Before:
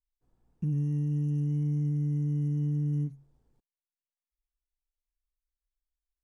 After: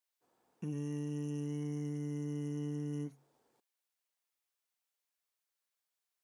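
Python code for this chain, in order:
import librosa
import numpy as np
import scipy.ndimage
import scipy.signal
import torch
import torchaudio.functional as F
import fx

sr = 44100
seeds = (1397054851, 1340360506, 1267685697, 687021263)

y = scipy.signal.sosfilt(scipy.signal.butter(2, 470.0, 'highpass', fs=sr, output='sos'), x)
y = y * librosa.db_to_amplitude(7.5)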